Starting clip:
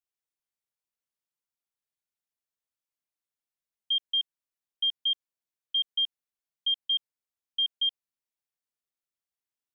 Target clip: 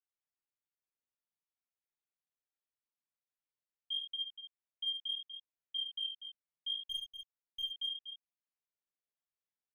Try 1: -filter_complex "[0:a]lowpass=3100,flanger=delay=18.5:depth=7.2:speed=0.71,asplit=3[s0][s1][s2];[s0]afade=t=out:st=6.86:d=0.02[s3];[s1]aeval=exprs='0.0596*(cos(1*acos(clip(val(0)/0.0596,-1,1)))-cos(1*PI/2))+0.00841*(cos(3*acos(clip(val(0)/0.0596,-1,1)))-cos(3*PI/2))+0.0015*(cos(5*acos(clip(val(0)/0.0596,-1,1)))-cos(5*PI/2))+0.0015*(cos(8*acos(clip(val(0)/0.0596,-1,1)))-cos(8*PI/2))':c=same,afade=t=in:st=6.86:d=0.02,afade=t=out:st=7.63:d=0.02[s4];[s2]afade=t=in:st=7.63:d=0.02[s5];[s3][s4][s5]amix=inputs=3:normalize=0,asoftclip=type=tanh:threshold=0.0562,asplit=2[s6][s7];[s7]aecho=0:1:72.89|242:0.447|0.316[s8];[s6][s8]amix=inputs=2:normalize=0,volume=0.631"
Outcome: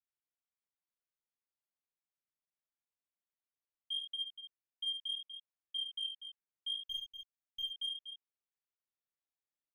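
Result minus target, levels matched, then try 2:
saturation: distortion +11 dB
-filter_complex "[0:a]lowpass=3100,flanger=delay=18.5:depth=7.2:speed=0.71,asplit=3[s0][s1][s2];[s0]afade=t=out:st=6.86:d=0.02[s3];[s1]aeval=exprs='0.0596*(cos(1*acos(clip(val(0)/0.0596,-1,1)))-cos(1*PI/2))+0.00841*(cos(3*acos(clip(val(0)/0.0596,-1,1)))-cos(3*PI/2))+0.0015*(cos(5*acos(clip(val(0)/0.0596,-1,1)))-cos(5*PI/2))+0.0015*(cos(8*acos(clip(val(0)/0.0596,-1,1)))-cos(8*PI/2))':c=same,afade=t=in:st=6.86:d=0.02,afade=t=out:st=7.63:d=0.02[s4];[s2]afade=t=in:st=7.63:d=0.02[s5];[s3][s4][s5]amix=inputs=3:normalize=0,asoftclip=type=tanh:threshold=0.112,asplit=2[s6][s7];[s7]aecho=0:1:72.89|242:0.447|0.316[s8];[s6][s8]amix=inputs=2:normalize=0,volume=0.631"

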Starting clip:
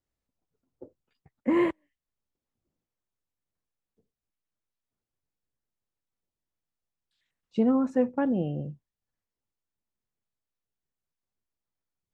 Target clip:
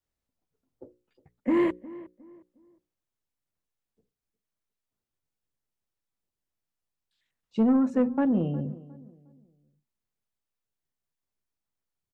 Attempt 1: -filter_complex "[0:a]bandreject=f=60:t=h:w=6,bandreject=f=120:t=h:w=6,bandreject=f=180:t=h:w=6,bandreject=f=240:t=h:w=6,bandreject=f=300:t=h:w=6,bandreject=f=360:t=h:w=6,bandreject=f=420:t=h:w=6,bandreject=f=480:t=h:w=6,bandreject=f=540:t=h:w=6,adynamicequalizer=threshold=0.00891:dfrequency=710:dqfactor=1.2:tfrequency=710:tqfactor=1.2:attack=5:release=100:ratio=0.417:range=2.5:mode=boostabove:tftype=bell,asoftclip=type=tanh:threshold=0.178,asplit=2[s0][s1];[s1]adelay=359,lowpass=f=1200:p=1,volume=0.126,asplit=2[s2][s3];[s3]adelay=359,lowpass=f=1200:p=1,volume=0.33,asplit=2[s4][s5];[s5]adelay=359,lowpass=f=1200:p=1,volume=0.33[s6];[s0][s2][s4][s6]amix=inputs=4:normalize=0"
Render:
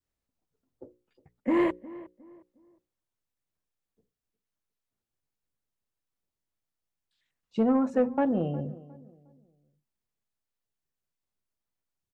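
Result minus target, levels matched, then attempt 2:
1 kHz band +4.5 dB
-filter_complex "[0:a]bandreject=f=60:t=h:w=6,bandreject=f=120:t=h:w=6,bandreject=f=180:t=h:w=6,bandreject=f=240:t=h:w=6,bandreject=f=300:t=h:w=6,bandreject=f=360:t=h:w=6,bandreject=f=420:t=h:w=6,bandreject=f=480:t=h:w=6,bandreject=f=540:t=h:w=6,adynamicequalizer=threshold=0.00891:dfrequency=220:dqfactor=1.2:tfrequency=220:tqfactor=1.2:attack=5:release=100:ratio=0.417:range=2.5:mode=boostabove:tftype=bell,asoftclip=type=tanh:threshold=0.178,asplit=2[s0][s1];[s1]adelay=359,lowpass=f=1200:p=1,volume=0.126,asplit=2[s2][s3];[s3]adelay=359,lowpass=f=1200:p=1,volume=0.33,asplit=2[s4][s5];[s5]adelay=359,lowpass=f=1200:p=1,volume=0.33[s6];[s0][s2][s4][s6]amix=inputs=4:normalize=0"

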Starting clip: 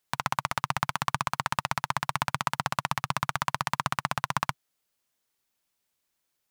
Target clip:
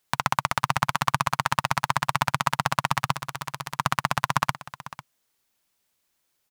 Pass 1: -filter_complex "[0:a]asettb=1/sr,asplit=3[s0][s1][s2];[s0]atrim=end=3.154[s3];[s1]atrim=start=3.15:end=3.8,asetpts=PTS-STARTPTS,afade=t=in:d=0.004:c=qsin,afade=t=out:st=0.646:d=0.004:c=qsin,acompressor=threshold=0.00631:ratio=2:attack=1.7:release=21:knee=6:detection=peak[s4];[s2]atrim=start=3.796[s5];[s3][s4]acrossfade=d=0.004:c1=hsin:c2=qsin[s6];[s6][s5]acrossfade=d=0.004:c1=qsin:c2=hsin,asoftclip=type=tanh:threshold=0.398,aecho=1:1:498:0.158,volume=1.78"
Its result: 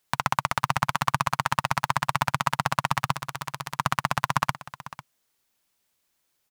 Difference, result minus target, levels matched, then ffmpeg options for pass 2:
saturation: distortion +12 dB
-filter_complex "[0:a]asettb=1/sr,asplit=3[s0][s1][s2];[s0]atrim=end=3.154[s3];[s1]atrim=start=3.15:end=3.8,asetpts=PTS-STARTPTS,afade=t=in:d=0.004:c=qsin,afade=t=out:st=0.646:d=0.004:c=qsin,acompressor=threshold=0.00631:ratio=2:attack=1.7:release=21:knee=6:detection=peak[s4];[s2]atrim=start=3.796[s5];[s3][s4]acrossfade=d=0.004:c1=hsin:c2=qsin[s6];[s6][s5]acrossfade=d=0.004:c1=qsin:c2=hsin,asoftclip=type=tanh:threshold=0.891,aecho=1:1:498:0.158,volume=1.78"

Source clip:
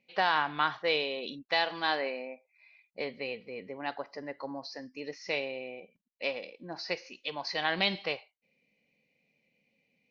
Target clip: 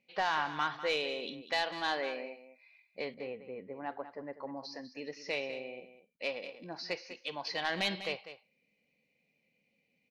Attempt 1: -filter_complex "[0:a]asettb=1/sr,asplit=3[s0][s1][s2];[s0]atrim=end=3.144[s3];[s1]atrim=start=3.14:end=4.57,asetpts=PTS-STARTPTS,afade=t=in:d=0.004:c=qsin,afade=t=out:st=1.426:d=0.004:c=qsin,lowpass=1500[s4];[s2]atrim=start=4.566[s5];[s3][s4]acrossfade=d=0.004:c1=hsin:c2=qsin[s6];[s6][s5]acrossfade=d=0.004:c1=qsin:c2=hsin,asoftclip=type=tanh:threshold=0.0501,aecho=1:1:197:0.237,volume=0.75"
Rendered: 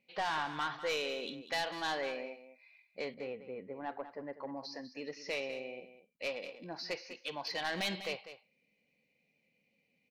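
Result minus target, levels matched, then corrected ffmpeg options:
saturation: distortion +8 dB
-filter_complex "[0:a]asettb=1/sr,asplit=3[s0][s1][s2];[s0]atrim=end=3.144[s3];[s1]atrim=start=3.14:end=4.57,asetpts=PTS-STARTPTS,afade=t=in:d=0.004:c=qsin,afade=t=out:st=1.426:d=0.004:c=qsin,lowpass=1500[s4];[s2]atrim=start=4.566[s5];[s3][s4]acrossfade=d=0.004:c1=hsin:c2=qsin[s6];[s6][s5]acrossfade=d=0.004:c1=qsin:c2=hsin,asoftclip=type=tanh:threshold=0.119,aecho=1:1:197:0.237,volume=0.75"

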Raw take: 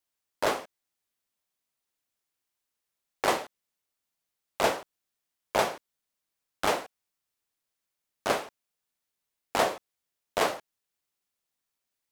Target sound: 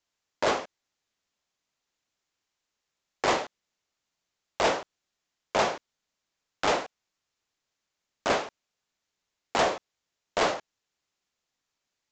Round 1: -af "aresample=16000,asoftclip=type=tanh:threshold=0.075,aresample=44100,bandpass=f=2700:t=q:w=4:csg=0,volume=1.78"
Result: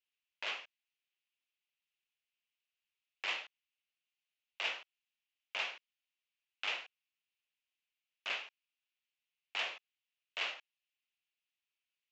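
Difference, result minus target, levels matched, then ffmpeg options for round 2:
2 kHz band +4.0 dB
-af "aresample=16000,asoftclip=type=tanh:threshold=0.075,aresample=44100,volume=1.78"

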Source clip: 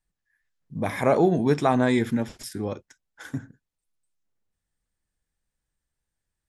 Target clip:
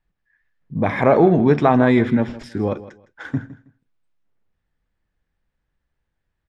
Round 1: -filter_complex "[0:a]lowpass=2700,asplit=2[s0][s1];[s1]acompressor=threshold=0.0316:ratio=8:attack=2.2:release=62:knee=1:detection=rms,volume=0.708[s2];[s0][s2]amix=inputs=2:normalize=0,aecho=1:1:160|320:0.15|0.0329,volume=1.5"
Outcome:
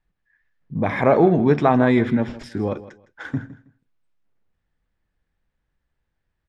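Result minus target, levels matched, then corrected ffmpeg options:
compression: peak gain reduction +9 dB
-filter_complex "[0:a]lowpass=2700,asplit=2[s0][s1];[s1]acompressor=threshold=0.1:ratio=8:attack=2.2:release=62:knee=1:detection=rms,volume=0.708[s2];[s0][s2]amix=inputs=2:normalize=0,aecho=1:1:160|320:0.15|0.0329,volume=1.5"

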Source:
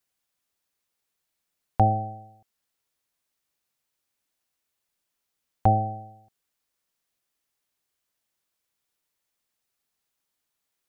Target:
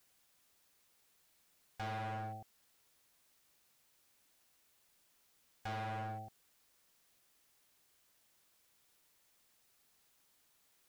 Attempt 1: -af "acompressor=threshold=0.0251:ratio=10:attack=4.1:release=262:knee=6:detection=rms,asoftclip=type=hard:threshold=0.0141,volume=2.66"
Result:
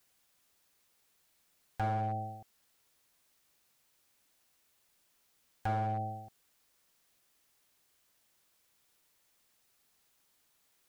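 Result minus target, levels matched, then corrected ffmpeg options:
hard clipper: distortion -6 dB
-af "acompressor=threshold=0.0251:ratio=10:attack=4.1:release=262:knee=6:detection=rms,asoftclip=type=hard:threshold=0.00398,volume=2.66"

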